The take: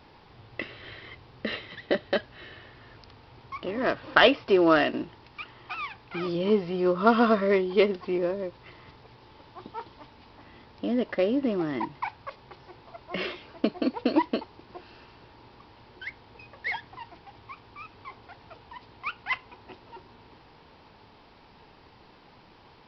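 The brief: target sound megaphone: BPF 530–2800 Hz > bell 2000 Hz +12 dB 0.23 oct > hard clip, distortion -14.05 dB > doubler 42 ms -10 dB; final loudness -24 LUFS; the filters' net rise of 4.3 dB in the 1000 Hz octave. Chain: BPF 530–2800 Hz; bell 1000 Hz +6 dB; bell 2000 Hz +12 dB 0.23 oct; hard clip -11 dBFS; doubler 42 ms -10 dB; gain +2.5 dB

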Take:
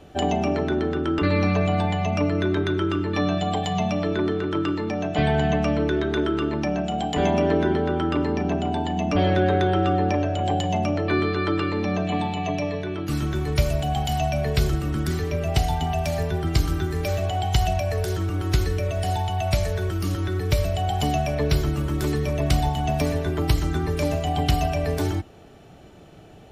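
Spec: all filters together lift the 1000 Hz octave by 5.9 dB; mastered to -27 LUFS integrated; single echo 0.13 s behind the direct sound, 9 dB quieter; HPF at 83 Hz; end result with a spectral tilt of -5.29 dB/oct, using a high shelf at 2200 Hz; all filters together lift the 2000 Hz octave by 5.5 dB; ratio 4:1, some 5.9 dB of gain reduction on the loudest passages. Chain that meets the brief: HPF 83 Hz; bell 1000 Hz +9 dB; bell 2000 Hz +7.5 dB; high shelf 2200 Hz -6.5 dB; compressor 4:1, threshold -22 dBFS; echo 0.13 s -9 dB; gain -1.5 dB

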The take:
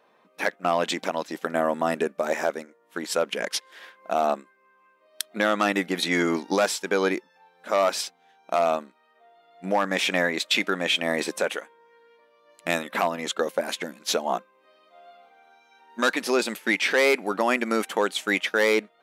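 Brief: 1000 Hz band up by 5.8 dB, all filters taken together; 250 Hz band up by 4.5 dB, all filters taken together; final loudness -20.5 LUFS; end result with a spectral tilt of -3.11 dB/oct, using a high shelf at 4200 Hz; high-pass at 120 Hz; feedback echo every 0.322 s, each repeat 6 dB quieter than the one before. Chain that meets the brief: HPF 120 Hz; bell 250 Hz +5.5 dB; bell 1000 Hz +7.5 dB; high shelf 4200 Hz +3 dB; feedback echo 0.322 s, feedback 50%, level -6 dB; gain +0.5 dB

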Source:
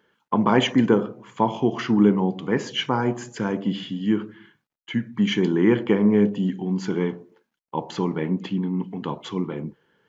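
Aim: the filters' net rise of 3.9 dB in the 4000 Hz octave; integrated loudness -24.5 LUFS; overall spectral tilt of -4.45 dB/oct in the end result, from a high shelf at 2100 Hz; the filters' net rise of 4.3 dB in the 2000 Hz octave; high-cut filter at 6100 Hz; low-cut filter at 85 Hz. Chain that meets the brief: HPF 85 Hz; LPF 6100 Hz; bell 2000 Hz +6.5 dB; high shelf 2100 Hz -6 dB; bell 4000 Hz +9 dB; gain -1.5 dB

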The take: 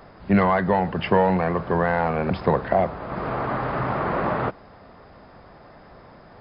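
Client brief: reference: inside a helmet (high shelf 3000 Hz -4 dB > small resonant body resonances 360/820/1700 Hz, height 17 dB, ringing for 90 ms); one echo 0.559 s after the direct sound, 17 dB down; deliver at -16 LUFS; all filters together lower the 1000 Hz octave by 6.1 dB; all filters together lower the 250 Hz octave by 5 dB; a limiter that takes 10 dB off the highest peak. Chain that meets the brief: bell 250 Hz -7.5 dB; bell 1000 Hz -7 dB; limiter -20.5 dBFS; high shelf 3000 Hz -4 dB; echo 0.559 s -17 dB; small resonant body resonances 360/820/1700 Hz, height 17 dB, ringing for 90 ms; gain +10 dB

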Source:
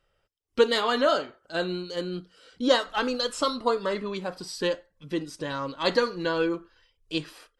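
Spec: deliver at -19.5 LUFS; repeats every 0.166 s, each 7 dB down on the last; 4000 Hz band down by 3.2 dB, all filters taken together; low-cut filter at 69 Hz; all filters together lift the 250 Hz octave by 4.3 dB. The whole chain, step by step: HPF 69 Hz; bell 250 Hz +5.5 dB; bell 4000 Hz -4 dB; feedback echo 0.166 s, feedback 45%, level -7 dB; gain +6.5 dB

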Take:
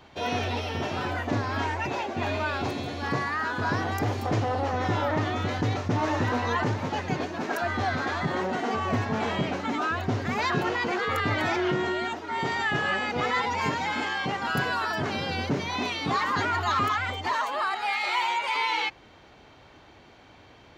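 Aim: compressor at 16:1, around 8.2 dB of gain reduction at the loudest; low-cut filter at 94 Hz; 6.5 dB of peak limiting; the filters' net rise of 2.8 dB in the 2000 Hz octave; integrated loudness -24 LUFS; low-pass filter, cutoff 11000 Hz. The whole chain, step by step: HPF 94 Hz; LPF 11000 Hz; bell 2000 Hz +3.5 dB; compressor 16:1, threshold -29 dBFS; gain +10.5 dB; limiter -16 dBFS

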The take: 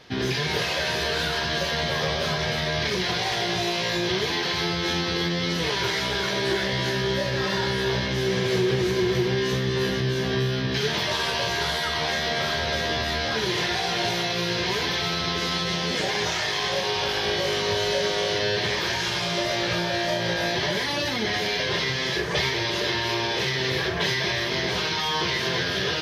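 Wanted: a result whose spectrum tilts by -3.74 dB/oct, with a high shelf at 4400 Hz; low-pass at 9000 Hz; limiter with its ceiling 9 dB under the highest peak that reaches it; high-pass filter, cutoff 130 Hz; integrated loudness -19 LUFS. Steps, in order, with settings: HPF 130 Hz; LPF 9000 Hz; high shelf 4400 Hz -3.5 dB; gain +10 dB; limiter -11.5 dBFS

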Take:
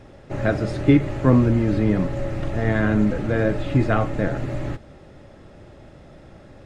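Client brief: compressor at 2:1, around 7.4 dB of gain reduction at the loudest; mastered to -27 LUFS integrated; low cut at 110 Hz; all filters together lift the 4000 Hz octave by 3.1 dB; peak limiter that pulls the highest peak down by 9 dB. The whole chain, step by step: HPF 110 Hz; bell 4000 Hz +4 dB; compressor 2:1, threshold -24 dBFS; gain +3 dB; limiter -17 dBFS

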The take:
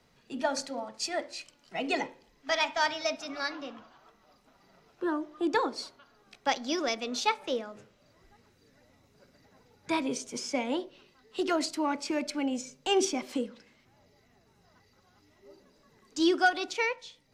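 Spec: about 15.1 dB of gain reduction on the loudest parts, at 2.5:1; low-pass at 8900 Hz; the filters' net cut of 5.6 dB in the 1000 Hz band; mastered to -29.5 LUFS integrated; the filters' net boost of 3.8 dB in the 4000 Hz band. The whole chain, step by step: LPF 8900 Hz; bell 1000 Hz -8 dB; bell 4000 Hz +5.5 dB; compressor 2.5:1, threshold -45 dBFS; gain +13.5 dB

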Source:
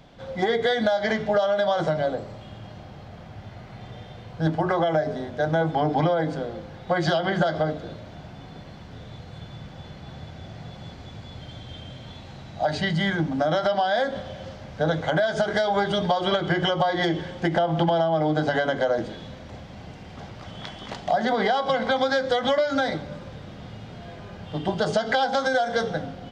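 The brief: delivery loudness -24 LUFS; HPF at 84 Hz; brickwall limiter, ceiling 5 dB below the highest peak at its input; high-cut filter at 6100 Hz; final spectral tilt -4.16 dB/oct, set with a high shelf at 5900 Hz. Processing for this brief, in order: HPF 84 Hz; LPF 6100 Hz; high shelf 5900 Hz -3.5 dB; gain +1.5 dB; limiter -13.5 dBFS

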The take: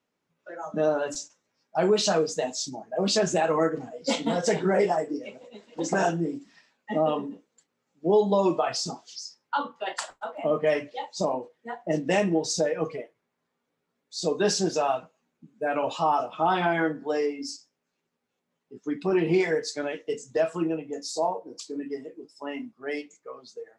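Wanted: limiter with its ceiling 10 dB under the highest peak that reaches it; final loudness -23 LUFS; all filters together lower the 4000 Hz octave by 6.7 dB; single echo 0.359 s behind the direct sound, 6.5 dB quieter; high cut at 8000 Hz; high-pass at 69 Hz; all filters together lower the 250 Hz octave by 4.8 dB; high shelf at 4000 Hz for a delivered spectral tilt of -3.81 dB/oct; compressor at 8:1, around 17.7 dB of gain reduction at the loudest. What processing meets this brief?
HPF 69 Hz; LPF 8000 Hz; bell 250 Hz -7.5 dB; high shelf 4000 Hz -5.5 dB; bell 4000 Hz -4.5 dB; compressor 8:1, threshold -39 dBFS; limiter -34.5 dBFS; echo 0.359 s -6.5 dB; gain +22 dB

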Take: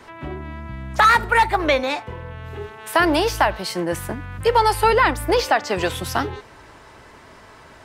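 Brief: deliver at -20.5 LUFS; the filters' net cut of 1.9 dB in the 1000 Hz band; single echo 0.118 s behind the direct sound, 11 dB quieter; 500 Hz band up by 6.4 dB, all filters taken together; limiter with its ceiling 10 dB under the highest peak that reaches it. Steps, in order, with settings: bell 500 Hz +8.5 dB; bell 1000 Hz -5 dB; limiter -11.5 dBFS; echo 0.118 s -11 dB; gain +2 dB

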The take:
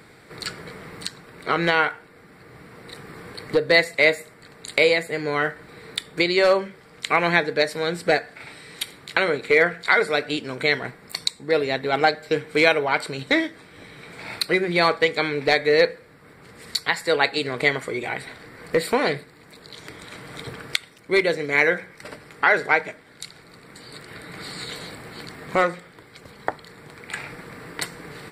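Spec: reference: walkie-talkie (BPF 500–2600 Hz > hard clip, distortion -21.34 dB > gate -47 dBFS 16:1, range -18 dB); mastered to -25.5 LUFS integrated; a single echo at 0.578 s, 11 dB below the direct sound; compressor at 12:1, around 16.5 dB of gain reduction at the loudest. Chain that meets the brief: compressor 12:1, threshold -29 dBFS; BPF 500–2600 Hz; echo 0.578 s -11 dB; hard clip -23 dBFS; gate -47 dBFS 16:1, range -18 dB; gain +13 dB

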